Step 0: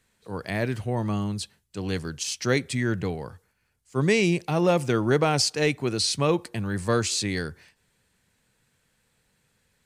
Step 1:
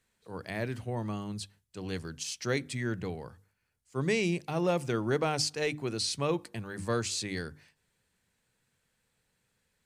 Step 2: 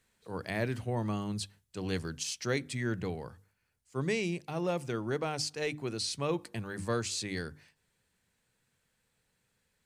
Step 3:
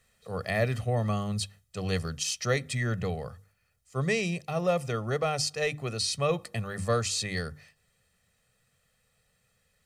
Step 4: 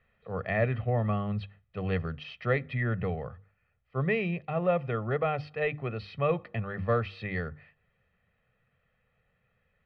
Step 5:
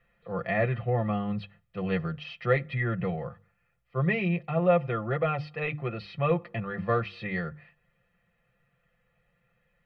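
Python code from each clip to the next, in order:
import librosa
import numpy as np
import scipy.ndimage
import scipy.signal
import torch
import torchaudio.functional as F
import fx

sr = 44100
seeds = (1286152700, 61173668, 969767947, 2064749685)

y1 = fx.hum_notches(x, sr, base_hz=50, count=6)
y1 = y1 * librosa.db_to_amplitude(-7.0)
y2 = fx.rider(y1, sr, range_db=4, speed_s=0.5)
y2 = y2 * librosa.db_to_amplitude(-1.5)
y3 = y2 + 0.73 * np.pad(y2, (int(1.6 * sr / 1000.0), 0))[:len(y2)]
y3 = y3 * librosa.db_to_amplitude(3.5)
y4 = scipy.signal.sosfilt(scipy.signal.cheby2(4, 50, 6500.0, 'lowpass', fs=sr, output='sos'), y3)
y5 = y4 + 0.73 * np.pad(y4, (int(5.8 * sr / 1000.0), 0))[:len(y4)]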